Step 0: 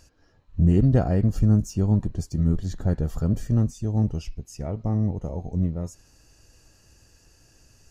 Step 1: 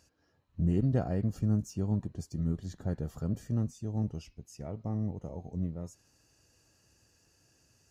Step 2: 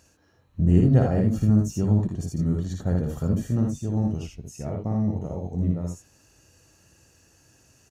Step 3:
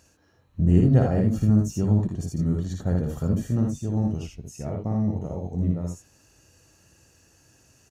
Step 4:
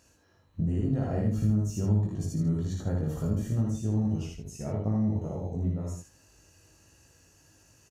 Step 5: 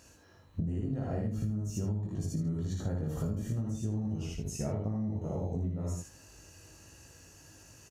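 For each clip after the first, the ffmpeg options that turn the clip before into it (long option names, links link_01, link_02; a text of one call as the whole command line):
ffmpeg -i in.wav -af "highpass=89,volume=-8.5dB" out.wav
ffmpeg -i in.wav -filter_complex "[0:a]bandreject=frequency=4900:width=7.2,asplit=2[link_01][link_02];[link_02]aecho=0:1:57|79:0.631|0.562[link_03];[link_01][link_03]amix=inputs=2:normalize=0,volume=7dB" out.wav
ffmpeg -i in.wav -af anull out.wav
ffmpeg -i in.wav -af "acompressor=threshold=-22dB:ratio=5,aecho=1:1:19|78:0.708|0.501,volume=-4dB" out.wav
ffmpeg -i in.wav -af "acompressor=threshold=-35dB:ratio=10,volume=5dB" out.wav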